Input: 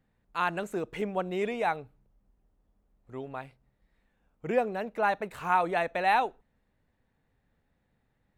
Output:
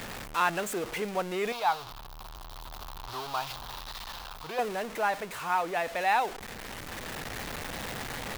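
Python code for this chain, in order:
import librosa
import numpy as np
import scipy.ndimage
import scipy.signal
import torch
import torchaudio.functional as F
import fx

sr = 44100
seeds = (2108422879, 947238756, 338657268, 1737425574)

y = x + 0.5 * 10.0 ** (-32.0 / 20.0) * np.sign(x)
y = fx.low_shelf(y, sr, hz=380.0, db=-9.0)
y = fx.rider(y, sr, range_db=5, speed_s=2.0)
y = fx.graphic_eq(y, sr, hz=(125, 250, 500, 1000, 2000, 4000, 8000), db=(-5, -11, -9, 8, -11, 8, -8), at=(1.52, 4.59))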